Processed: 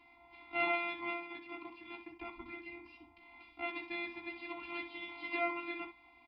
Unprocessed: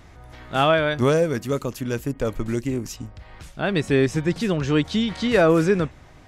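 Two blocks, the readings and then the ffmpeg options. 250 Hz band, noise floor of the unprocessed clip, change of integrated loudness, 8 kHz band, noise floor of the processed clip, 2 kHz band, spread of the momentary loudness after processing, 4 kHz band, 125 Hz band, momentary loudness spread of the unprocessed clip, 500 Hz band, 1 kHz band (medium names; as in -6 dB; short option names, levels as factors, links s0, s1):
-23.5 dB, -47 dBFS, -18.0 dB, under -40 dB, -63 dBFS, -10.5 dB, 21 LU, -18.0 dB, under -40 dB, 11 LU, -23.5 dB, -14.0 dB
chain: -filter_complex "[0:a]acrossover=split=3200[s0][s1];[s1]acompressor=threshold=0.00316:ratio=4:attack=1:release=60[s2];[s0][s2]amix=inputs=2:normalize=0,firequalizer=gain_entry='entry(100,0);entry(200,-20);entry(770,2)':delay=0.05:min_phase=1,acrossover=split=100|460|2700[s3][s4][s5][s6];[s4]acompressor=threshold=0.00631:ratio=6[s7];[s3][s7][s5][s6]amix=inputs=4:normalize=0,afftfilt=real='hypot(re,im)*cos(PI*b)':imag='0':win_size=512:overlap=0.75,aeval=exprs='max(val(0),0)':c=same,asplit=3[s8][s9][s10];[s8]bandpass=f=300:t=q:w=8,volume=1[s11];[s9]bandpass=f=870:t=q:w=8,volume=0.501[s12];[s10]bandpass=f=2240:t=q:w=8,volume=0.355[s13];[s11][s12][s13]amix=inputs=3:normalize=0,aecho=1:1:16|63:0.531|0.316,aresample=11025,aresample=44100,volume=3.16"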